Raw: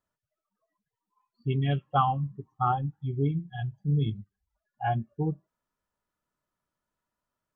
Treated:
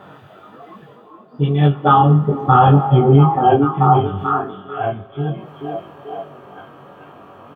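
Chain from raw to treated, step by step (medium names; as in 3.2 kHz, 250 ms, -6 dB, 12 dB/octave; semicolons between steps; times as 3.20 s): spectral levelling over time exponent 0.6; Doppler pass-by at 2.68 s, 16 m/s, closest 4.4 m; high-pass 76 Hz; peaking EQ 480 Hz +5.5 dB 1.4 oct; band-stop 2.1 kHz, Q 21; reverse; upward compressor, threshold -44 dBFS; reverse; flange 1.3 Hz, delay 4.9 ms, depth 5.8 ms, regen +35%; doubling 21 ms -2 dB; on a send: repeats whose band climbs or falls 438 ms, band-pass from 320 Hz, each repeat 0.7 oct, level -1 dB; on the sum: spring tank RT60 1.9 s, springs 42/46 ms, chirp 50 ms, DRR 18 dB; loudness maximiser +21.5 dB; trim -1 dB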